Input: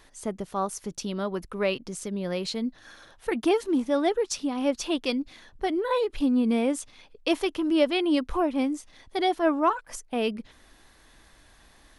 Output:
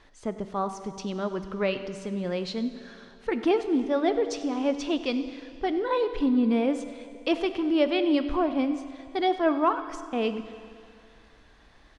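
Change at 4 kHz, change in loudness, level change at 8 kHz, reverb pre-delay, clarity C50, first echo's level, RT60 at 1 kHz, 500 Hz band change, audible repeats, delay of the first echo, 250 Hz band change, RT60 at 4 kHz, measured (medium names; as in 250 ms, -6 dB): -2.5 dB, 0.0 dB, -9.0 dB, 10 ms, 10.5 dB, -18.5 dB, 2.4 s, 0.0 dB, 1, 97 ms, 0.0 dB, 2.4 s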